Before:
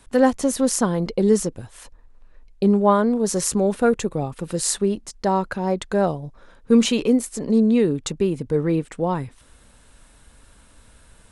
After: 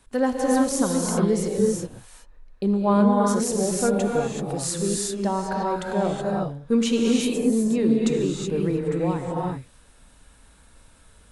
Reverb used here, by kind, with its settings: gated-style reverb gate 400 ms rising, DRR -2 dB; trim -6 dB

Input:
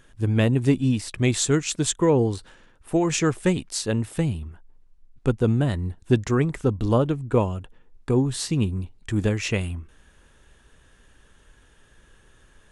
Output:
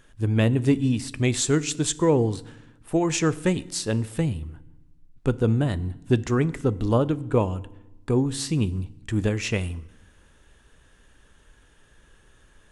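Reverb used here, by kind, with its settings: FDN reverb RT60 0.92 s, low-frequency decay 1.5×, high-frequency decay 0.9×, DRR 17 dB; trim -1 dB

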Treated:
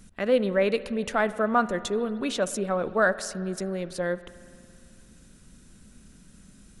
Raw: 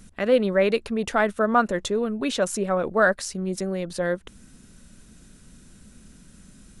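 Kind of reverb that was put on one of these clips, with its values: spring tank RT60 2.4 s, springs 55 ms, chirp 25 ms, DRR 15 dB; trim -3 dB

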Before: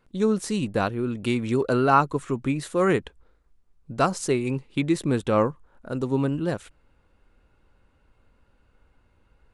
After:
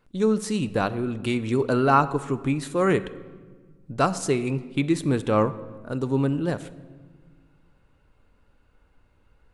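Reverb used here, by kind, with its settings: simulated room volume 1500 m³, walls mixed, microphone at 0.38 m

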